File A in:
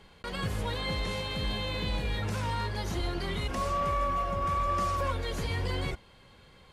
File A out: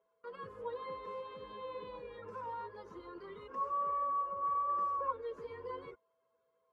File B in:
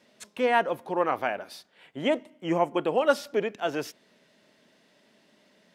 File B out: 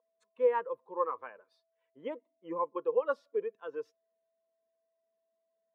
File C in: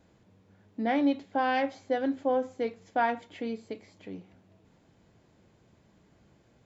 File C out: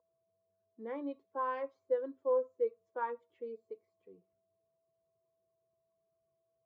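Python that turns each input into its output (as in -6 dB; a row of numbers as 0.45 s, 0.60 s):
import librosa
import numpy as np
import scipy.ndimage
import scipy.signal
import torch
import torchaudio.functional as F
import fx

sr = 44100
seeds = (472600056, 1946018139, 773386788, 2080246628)

y = fx.bin_expand(x, sr, power=1.5)
y = y + 10.0 ** (-59.0 / 20.0) * np.sin(2.0 * np.pi * 660.0 * np.arange(len(y)) / sr)
y = fx.double_bandpass(y, sr, hz=710.0, octaves=1.1)
y = F.gain(torch.from_numpy(y), 2.0).numpy()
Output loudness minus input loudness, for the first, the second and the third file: -7.0 LU, -7.0 LU, -7.5 LU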